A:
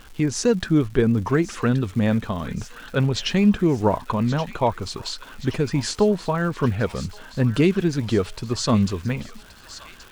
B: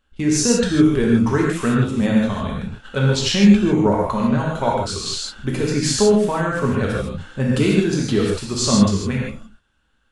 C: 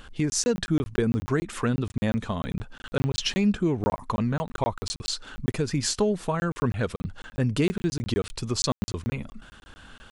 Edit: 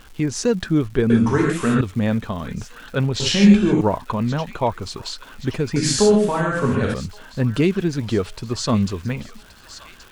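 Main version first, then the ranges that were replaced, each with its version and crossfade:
A
0:01.10–0:01.81: punch in from B
0:03.20–0:03.81: punch in from B
0:05.76–0:06.94: punch in from B
not used: C

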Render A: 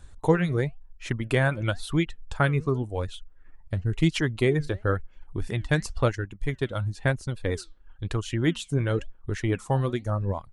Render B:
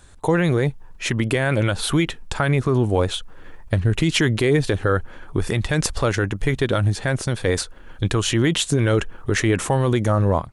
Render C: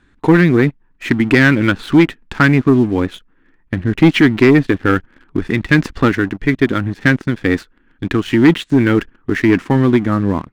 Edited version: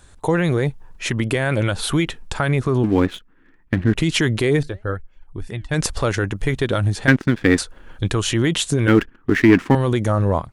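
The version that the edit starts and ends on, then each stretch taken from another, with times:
B
0:02.84–0:03.96: punch in from C
0:04.63–0:05.74: punch in from A
0:07.08–0:07.58: punch in from C
0:08.88–0:09.75: punch in from C

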